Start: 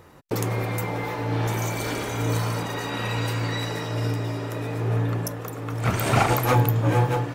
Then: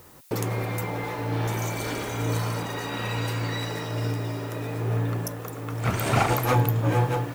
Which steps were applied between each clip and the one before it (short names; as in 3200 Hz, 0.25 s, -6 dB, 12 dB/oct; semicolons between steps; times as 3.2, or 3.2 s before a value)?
added noise blue -52 dBFS; gain -2 dB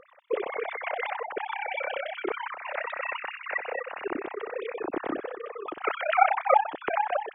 sine-wave speech; AM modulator 32 Hz, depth 70%